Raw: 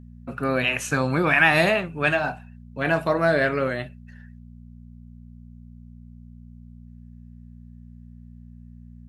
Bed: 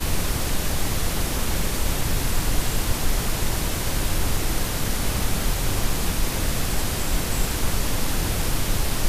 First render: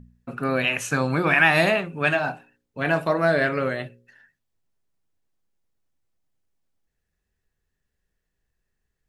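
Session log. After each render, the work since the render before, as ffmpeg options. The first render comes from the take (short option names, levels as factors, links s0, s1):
-af "bandreject=f=60:t=h:w=4,bandreject=f=120:t=h:w=4,bandreject=f=180:t=h:w=4,bandreject=f=240:t=h:w=4,bandreject=f=300:t=h:w=4,bandreject=f=360:t=h:w=4,bandreject=f=420:t=h:w=4,bandreject=f=480:t=h:w=4,bandreject=f=540:t=h:w=4"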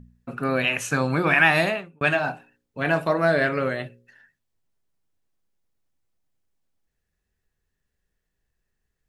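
-filter_complex "[0:a]asplit=2[s0][s1];[s0]atrim=end=2.01,asetpts=PTS-STARTPTS,afade=t=out:st=1.5:d=0.51[s2];[s1]atrim=start=2.01,asetpts=PTS-STARTPTS,afade=t=in:d=0.004:c=hsin[s3];[s2][s3]concat=n=2:v=0:a=1"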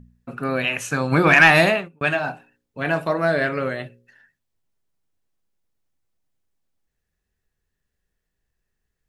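-filter_complex "[0:a]asplit=3[s0][s1][s2];[s0]afade=t=out:st=1.11:d=0.02[s3];[s1]acontrast=62,afade=t=in:st=1.11:d=0.02,afade=t=out:st=1.87:d=0.02[s4];[s2]afade=t=in:st=1.87:d=0.02[s5];[s3][s4][s5]amix=inputs=3:normalize=0"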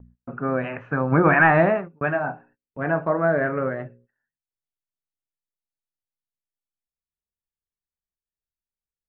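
-af "lowpass=f=1600:w=0.5412,lowpass=f=1600:w=1.3066,agate=range=0.0794:threshold=0.002:ratio=16:detection=peak"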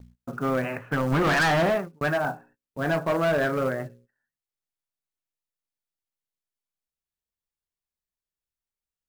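-af "asoftclip=type=hard:threshold=0.106,acrusher=bits=6:mode=log:mix=0:aa=0.000001"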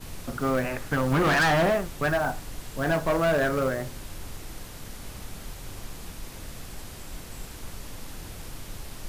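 -filter_complex "[1:a]volume=0.158[s0];[0:a][s0]amix=inputs=2:normalize=0"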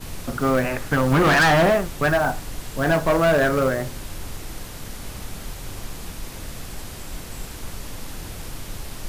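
-af "volume=1.88"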